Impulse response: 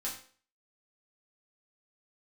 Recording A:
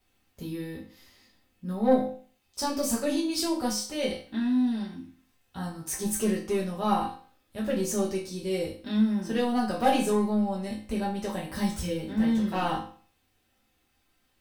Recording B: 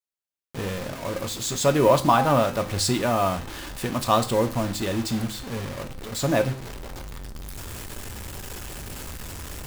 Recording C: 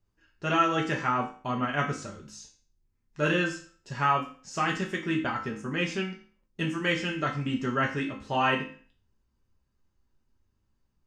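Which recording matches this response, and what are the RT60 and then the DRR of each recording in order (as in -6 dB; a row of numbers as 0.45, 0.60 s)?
A; 0.45, 0.45, 0.45 s; -6.0, 7.5, -1.0 dB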